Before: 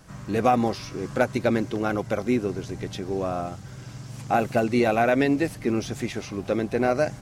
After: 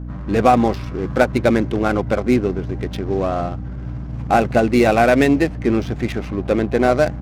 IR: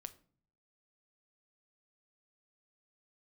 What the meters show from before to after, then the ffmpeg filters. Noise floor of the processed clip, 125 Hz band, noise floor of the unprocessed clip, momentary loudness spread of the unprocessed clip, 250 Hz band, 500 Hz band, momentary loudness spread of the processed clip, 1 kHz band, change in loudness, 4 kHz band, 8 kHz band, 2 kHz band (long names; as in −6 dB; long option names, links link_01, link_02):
−29 dBFS, +8.5 dB, −41 dBFS, 12 LU, +7.0 dB, +7.0 dB, 12 LU, +7.0 dB, +7.0 dB, +5.5 dB, +3.0 dB, +6.5 dB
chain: -af "adynamicsmooth=sensitivity=7.5:basefreq=930,aeval=exprs='val(0)+0.0178*(sin(2*PI*60*n/s)+sin(2*PI*2*60*n/s)/2+sin(2*PI*3*60*n/s)/3+sin(2*PI*4*60*n/s)/4+sin(2*PI*5*60*n/s)/5)':channel_layout=same,volume=7dB"